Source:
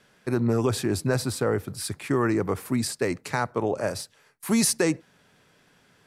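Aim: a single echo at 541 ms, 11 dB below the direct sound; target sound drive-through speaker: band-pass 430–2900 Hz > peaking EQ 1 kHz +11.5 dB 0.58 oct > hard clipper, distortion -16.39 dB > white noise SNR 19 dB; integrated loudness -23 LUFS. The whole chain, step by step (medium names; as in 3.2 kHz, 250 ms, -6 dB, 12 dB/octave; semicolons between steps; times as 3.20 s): band-pass 430–2900 Hz; peaking EQ 1 kHz +11.5 dB 0.58 oct; delay 541 ms -11 dB; hard clipper -15.5 dBFS; white noise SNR 19 dB; trim +6 dB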